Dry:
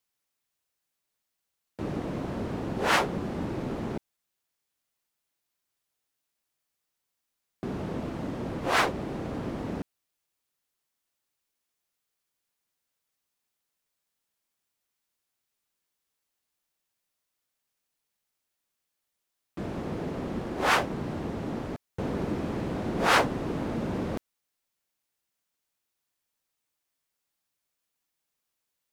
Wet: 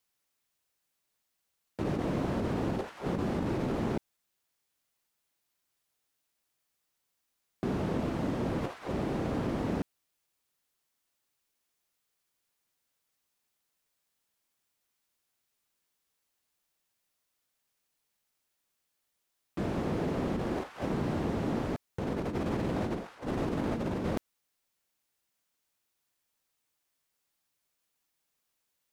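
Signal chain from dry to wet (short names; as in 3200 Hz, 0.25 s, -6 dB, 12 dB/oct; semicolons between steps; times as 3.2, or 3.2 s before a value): negative-ratio compressor -32 dBFS, ratio -0.5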